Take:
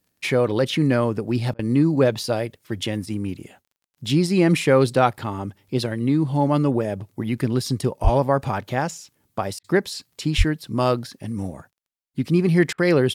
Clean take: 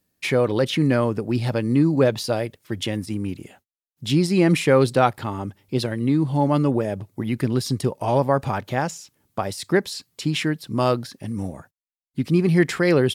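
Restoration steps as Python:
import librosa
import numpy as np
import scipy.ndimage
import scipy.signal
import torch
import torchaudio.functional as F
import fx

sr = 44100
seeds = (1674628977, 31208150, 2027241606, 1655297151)

y = fx.fix_declick_ar(x, sr, threshold=6.5)
y = fx.fix_deplosive(y, sr, at_s=(8.03, 10.37))
y = fx.fix_interpolate(y, sr, at_s=(1.54, 9.59, 12.73), length_ms=50.0)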